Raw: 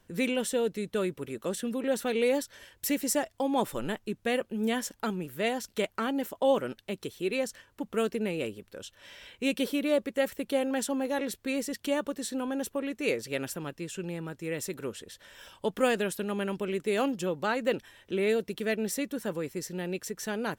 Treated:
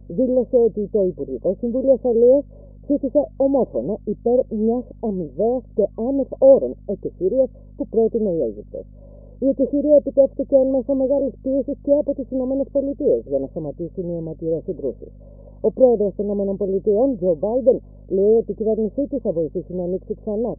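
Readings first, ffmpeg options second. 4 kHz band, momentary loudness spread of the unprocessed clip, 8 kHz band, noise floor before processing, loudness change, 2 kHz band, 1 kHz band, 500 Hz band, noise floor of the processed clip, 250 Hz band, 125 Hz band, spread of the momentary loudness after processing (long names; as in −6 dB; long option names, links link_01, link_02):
below −40 dB, 10 LU, below −40 dB, −66 dBFS, +11.0 dB, below −40 dB, +1.0 dB, +13.5 dB, −42 dBFS, +9.5 dB, +9.0 dB, 11 LU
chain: -af "afftfilt=real='re*between(b*sr/4096,130,1100)':imag='im*between(b*sr/4096,130,1100)':win_size=4096:overlap=0.75,aeval=exprs='val(0)+0.00355*(sin(2*PI*50*n/s)+sin(2*PI*2*50*n/s)/2+sin(2*PI*3*50*n/s)/3+sin(2*PI*4*50*n/s)/4+sin(2*PI*5*50*n/s)/5)':channel_layout=same,lowshelf=frequency=750:width_type=q:width=3:gain=9,volume=-1dB"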